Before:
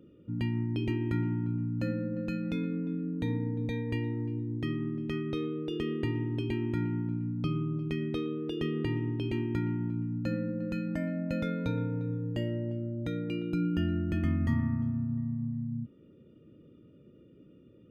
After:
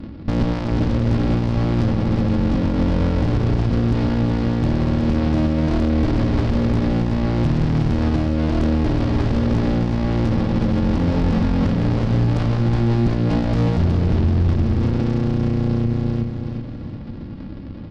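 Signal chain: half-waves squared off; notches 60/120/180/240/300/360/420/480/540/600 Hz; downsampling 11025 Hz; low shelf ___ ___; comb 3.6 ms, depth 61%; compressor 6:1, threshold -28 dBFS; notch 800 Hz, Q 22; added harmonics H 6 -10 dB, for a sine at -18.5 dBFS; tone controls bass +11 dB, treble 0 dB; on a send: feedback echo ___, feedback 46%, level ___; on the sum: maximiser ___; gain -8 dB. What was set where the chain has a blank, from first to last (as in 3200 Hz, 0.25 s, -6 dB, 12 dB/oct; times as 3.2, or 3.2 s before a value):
380 Hz, +11 dB, 0.369 s, -7 dB, +12.5 dB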